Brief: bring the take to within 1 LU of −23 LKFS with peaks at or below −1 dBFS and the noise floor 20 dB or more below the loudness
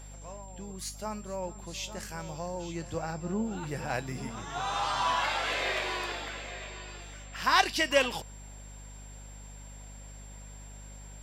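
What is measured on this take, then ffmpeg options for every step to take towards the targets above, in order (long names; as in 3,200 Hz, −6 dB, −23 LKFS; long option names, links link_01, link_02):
mains hum 50 Hz; hum harmonics up to 250 Hz; level of the hum −44 dBFS; interfering tone 7,400 Hz; level of the tone −52 dBFS; integrated loudness −31.5 LKFS; sample peak −8.0 dBFS; target loudness −23.0 LKFS
→ -af "bandreject=frequency=50:width_type=h:width=4,bandreject=frequency=100:width_type=h:width=4,bandreject=frequency=150:width_type=h:width=4,bandreject=frequency=200:width_type=h:width=4,bandreject=frequency=250:width_type=h:width=4"
-af "bandreject=frequency=7400:width=30"
-af "volume=8.5dB,alimiter=limit=-1dB:level=0:latency=1"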